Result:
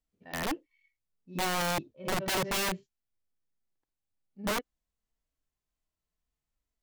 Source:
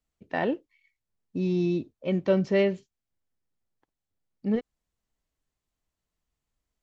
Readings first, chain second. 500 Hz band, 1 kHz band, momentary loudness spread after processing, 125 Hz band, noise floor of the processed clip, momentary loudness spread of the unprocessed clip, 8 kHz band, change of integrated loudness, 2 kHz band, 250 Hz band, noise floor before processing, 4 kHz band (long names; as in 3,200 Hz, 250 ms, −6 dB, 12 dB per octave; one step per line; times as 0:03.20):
−9.5 dB, +5.0 dB, 11 LU, −9.0 dB, below −85 dBFS, 12 LU, can't be measured, −4.5 dB, +3.0 dB, −10.5 dB, below −85 dBFS, +9.5 dB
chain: echo ahead of the sound 78 ms −16.5 dB
harmonic and percussive parts rebalanced percussive −17 dB
wrap-around overflow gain 24 dB
level −1 dB